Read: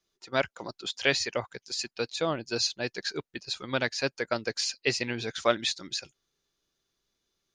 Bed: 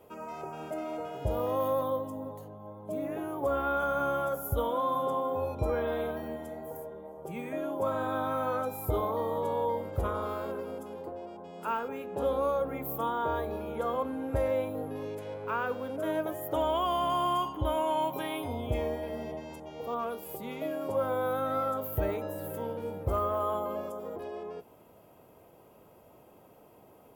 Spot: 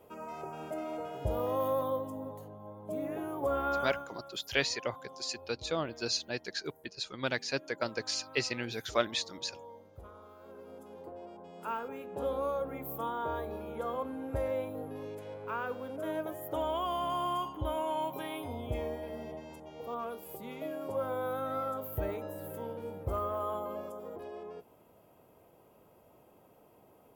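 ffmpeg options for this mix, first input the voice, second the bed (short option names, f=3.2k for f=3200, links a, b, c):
-filter_complex "[0:a]adelay=3500,volume=-4.5dB[a];[1:a]volume=13dB,afade=t=out:st=3.75:d=0.32:silence=0.133352,afade=t=in:st=10.38:d=0.88:silence=0.177828[b];[a][b]amix=inputs=2:normalize=0"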